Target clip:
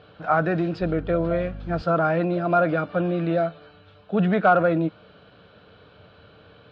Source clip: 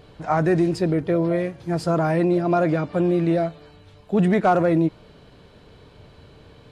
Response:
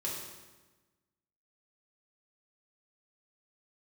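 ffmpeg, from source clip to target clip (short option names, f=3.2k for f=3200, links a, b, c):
-filter_complex "[0:a]highpass=120,equalizer=f=140:t=q:w=4:g=-9,equalizer=f=250:t=q:w=4:g=-8,equalizer=f=370:t=q:w=4:g=-9,equalizer=f=940:t=q:w=4:g=-7,equalizer=f=1.4k:t=q:w=4:g=7,equalizer=f=2k:t=q:w=4:g=-8,lowpass=f=3.7k:w=0.5412,lowpass=f=3.7k:w=1.3066,asettb=1/sr,asplit=3[a][b][c];[a]atrim=end=0.814[d];[b]atrim=start=0.81:end=1.82,asetpts=PTS-STARTPTS,afade=t=in:d=0.004:c=qsin,afade=t=out:st=1.006:d=0.004:c=qsin,aeval=exprs='val(0)+0.0158*(sin(2*PI*50*n/s)+sin(2*PI*2*50*n/s)/2+sin(2*PI*3*50*n/s)/3+sin(2*PI*4*50*n/s)/4+sin(2*PI*5*50*n/s)/5)':c=same[e];[c]atrim=start=1.816[f];[d][e]acrossfade=d=0.004:c1=hsin:c2=qsin[g];[g][f]acrossfade=d=0.004:c1=qsin:c2=hsin,volume=2dB"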